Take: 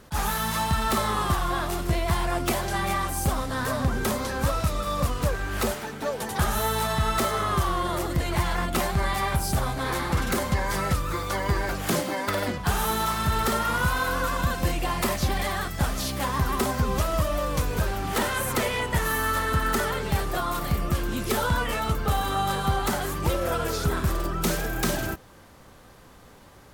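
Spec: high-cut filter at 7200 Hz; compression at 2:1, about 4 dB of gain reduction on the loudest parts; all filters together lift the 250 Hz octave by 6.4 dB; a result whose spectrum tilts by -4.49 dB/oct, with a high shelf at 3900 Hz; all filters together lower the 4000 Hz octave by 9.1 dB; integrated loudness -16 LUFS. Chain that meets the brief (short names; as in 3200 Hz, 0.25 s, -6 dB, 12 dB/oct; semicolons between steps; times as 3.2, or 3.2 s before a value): LPF 7200 Hz; bell 250 Hz +8.5 dB; high shelf 3900 Hz -5 dB; bell 4000 Hz -8.5 dB; compressor 2:1, threshold -25 dBFS; gain +12 dB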